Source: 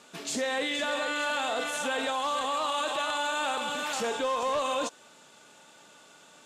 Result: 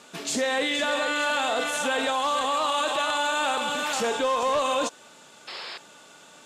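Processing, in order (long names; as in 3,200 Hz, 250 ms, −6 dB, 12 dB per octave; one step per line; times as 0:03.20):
sound drawn into the spectrogram noise, 0:05.47–0:05.78, 340–5,400 Hz −42 dBFS
level +4.5 dB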